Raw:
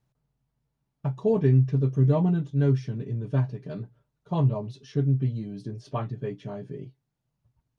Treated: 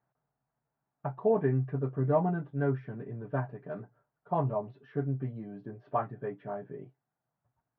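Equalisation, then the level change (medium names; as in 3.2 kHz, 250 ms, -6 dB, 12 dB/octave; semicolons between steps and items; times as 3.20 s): high-pass 310 Hz 6 dB/octave; four-pole ladder low-pass 1.9 kHz, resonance 40%; peaking EQ 720 Hz +8 dB 0.44 oct; +6.0 dB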